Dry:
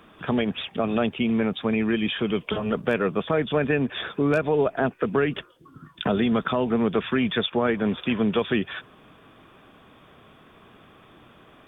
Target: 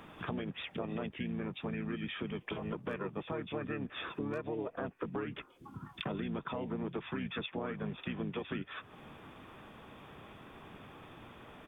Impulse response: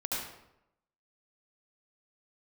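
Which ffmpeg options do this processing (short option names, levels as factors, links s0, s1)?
-filter_complex "[0:a]asplit=2[s0][s1];[s1]asetrate=33038,aresample=44100,atempo=1.33484,volume=0.794[s2];[s0][s2]amix=inputs=2:normalize=0,acompressor=threshold=0.0126:ratio=3,volume=0.75"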